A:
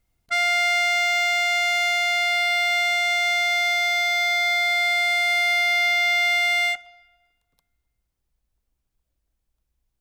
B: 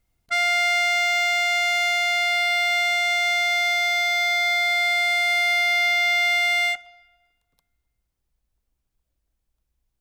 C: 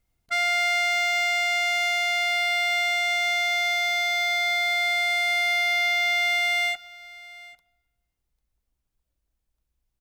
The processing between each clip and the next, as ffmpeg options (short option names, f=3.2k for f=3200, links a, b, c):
-af anull
-af "acrusher=bits=9:mode=log:mix=0:aa=0.000001,aecho=1:1:797:0.0944,volume=-2.5dB"